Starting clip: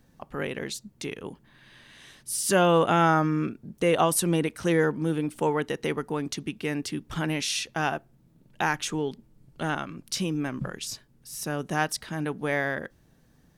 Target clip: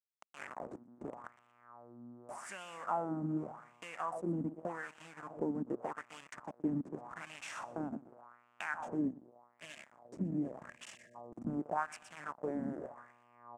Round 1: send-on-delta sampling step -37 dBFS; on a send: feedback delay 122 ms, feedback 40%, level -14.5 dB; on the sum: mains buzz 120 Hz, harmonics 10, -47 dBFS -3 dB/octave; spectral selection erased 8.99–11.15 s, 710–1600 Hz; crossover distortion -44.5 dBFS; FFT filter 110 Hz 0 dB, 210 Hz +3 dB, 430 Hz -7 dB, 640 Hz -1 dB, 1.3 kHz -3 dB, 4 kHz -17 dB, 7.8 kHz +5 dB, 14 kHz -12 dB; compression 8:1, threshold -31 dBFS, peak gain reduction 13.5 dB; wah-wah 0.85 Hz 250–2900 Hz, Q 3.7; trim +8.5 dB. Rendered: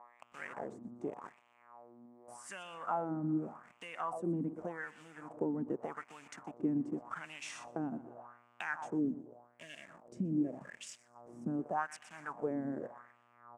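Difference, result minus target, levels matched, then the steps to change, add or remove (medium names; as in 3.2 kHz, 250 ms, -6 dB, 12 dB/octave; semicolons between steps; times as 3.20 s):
send-on-delta sampling: distortion -12 dB; crossover distortion: distortion -9 dB
change: send-on-delta sampling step -25.5 dBFS; change: crossover distortion -36 dBFS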